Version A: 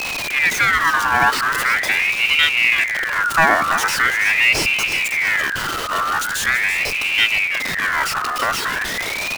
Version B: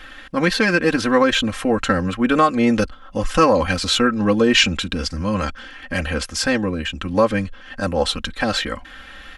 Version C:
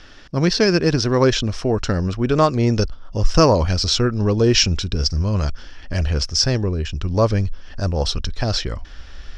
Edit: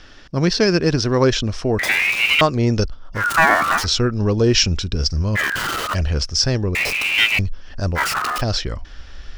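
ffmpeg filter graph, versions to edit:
-filter_complex "[0:a]asplit=5[a][b][c][d][e];[2:a]asplit=6[f][g][h][i][j][k];[f]atrim=end=1.792[l];[a]atrim=start=1.788:end=2.412[m];[g]atrim=start=2.408:end=3.24[n];[b]atrim=start=3.14:end=3.87[o];[h]atrim=start=3.77:end=5.37[p];[c]atrim=start=5.35:end=5.95[q];[i]atrim=start=5.93:end=6.752[r];[d]atrim=start=6.748:end=7.392[s];[j]atrim=start=7.388:end=7.99[t];[e]atrim=start=7.95:end=8.42[u];[k]atrim=start=8.38[v];[l][m]acrossfade=d=0.004:c1=hsin:c2=hsin[w];[w][n]acrossfade=d=0.004:c1=hsin:c2=hsin[x];[x][o]acrossfade=d=0.1:c1=tri:c2=tri[y];[y][p]acrossfade=d=0.1:c1=tri:c2=tri[z];[z][q]acrossfade=d=0.02:c1=tri:c2=tri[aa];[aa][r]acrossfade=d=0.02:c1=tri:c2=tri[ab];[ab][s]acrossfade=d=0.004:c1=hsin:c2=hsin[ac];[ac][t]acrossfade=d=0.004:c1=hsin:c2=hsin[ad];[ad][u]acrossfade=d=0.04:c1=tri:c2=tri[ae];[ae][v]acrossfade=d=0.04:c1=tri:c2=tri"

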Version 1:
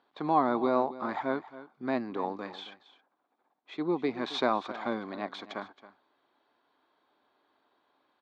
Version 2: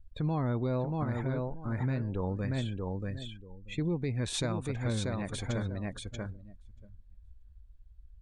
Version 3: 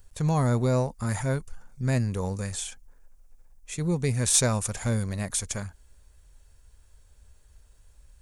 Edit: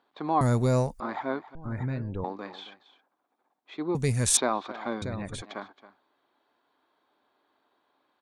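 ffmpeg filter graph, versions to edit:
-filter_complex "[2:a]asplit=2[a][b];[1:a]asplit=2[c][d];[0:a]asplit=5[e][f][g][h][i];[e]atrim=end=0.412[j];[a]atrim=start=0.408:end=1.002[k];[f]atrim=start=0.998:end=1.552[l];[c]atrim=start=1.548:end=2.242[m];[g]atrim=start=2.238:end=3.952[n];[b]atrim=start=3.948:end=4.372[o];[h]atrim=start=4.368:end=5.022[p];[d]atrim=start=5.018:end=5.422[q];[i]atrim=start=5.418[r];[j][k]acrossfade=d=0.004:c1=hsin:c2=hsin[s];[s][l]acrossfade=d=0.004:c1=hsin:c2=hsin[t];[t][m]acrossfade=d=0.004:c1=hsin:c2=hsin[u];[u][n]acrossfade=d=0.004:c1=hsin:c2=hsin[v];[v][o]acrossfade=d=0.004:c1=hsin:c2=hsin[w];[w][p]acrossfade=d=0.004:c1=hsin:c2=hsin[x];[x][q]acrossfade=d=0.004:c1=hsin:c2=hsin[y];[y][r]acrossfade=d=0.004:c1=hsin:c2=hsin"

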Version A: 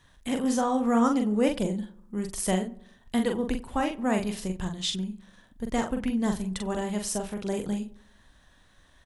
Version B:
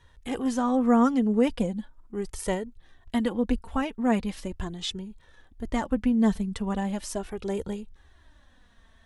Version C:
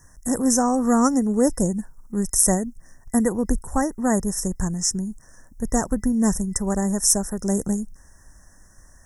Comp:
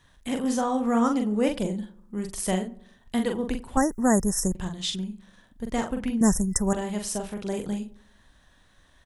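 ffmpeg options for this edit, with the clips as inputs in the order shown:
-filter_complex "[2:a]asplit=2[a][b];[0:a]asplit=3[c][d][e];[c]atrim=end=3.772[f];[a]atrim=start=3.768:end=4.552[g];[d]atrim=start=4.548:end=6.212[h];[b]atrim=start=6.208:end=6.732[i];[e]atrim=start=6.728[j];[f][g]acrossfade=d=0.004:c1=hsin:c2=hsin[k];[k][h]acrossfade=d=0.004:c1=hsin:c2=hsin[l];[l][i]acrossfade=d=0.004:c1=hsin:c2=hsin[m];[m][j]acrossfade=d=0.004:c1=hsin:c2=hsin"

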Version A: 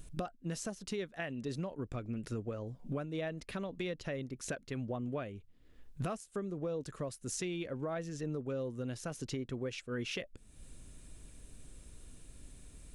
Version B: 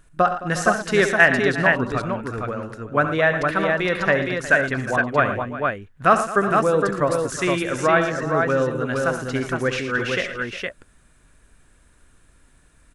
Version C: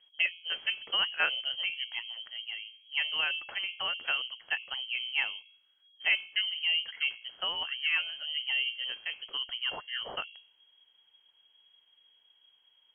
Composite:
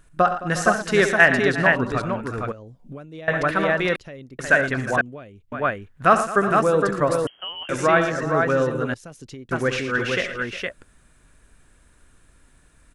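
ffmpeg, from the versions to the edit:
-filter_complex "[0:a]asplit=4[a][b][c][d];[1:a]asplit=6[e][f][g][h][i][j];[e]atrim=end=2.522[k];[a]atrim=start=2.518:end=3.282[l];[f]atrim=start=3.278:end=3.962[m];[b]atrim=start=3.958:end=4.392[n];[g]atrim=start=4.388:end=5.012[o];[c]atrim=start=5.008:end=5.522[p];[h]atrim=start=5.518:end=7.272[q];[2:a]atrim=start=7.268:end=7.692[r];[i]atrim=start=7.688:end=8.942[s];[d]atrim=start=8.938:end=9.512[t];[j]atrim=start=9.508[u];[k][l]acrossfade=d=0.004:c1=hsin:c2=hsin[v];[v][m]acrossfade=d=0.004:c1=hsin:c2=hsin[w];[w][n]acrossfade=d=0.004:c1=hsin:c2=hsin[x];[x][o]acrossfade=d=0.004:c1=hsin:c2=hsin[y];[y][p]acrossfade=d=0.004:c1=hsin:c2=hsin[z];[z][q]acrossfade=d=0.004:c1=hsin:c2=hsin[aa];[aa][r]acrossfade=d=0.004:c1=hsin:c2=hsin[ab];[ab][s]acrossfade=d=0.004:c1=hsin:c2=hsin[ac];[ac][t]acrossfade=d=0.004:c1=hsin:c2=hsin[ad];[ad][u]acrossfade=d=0.004:c1=hsin:c2=hsin"

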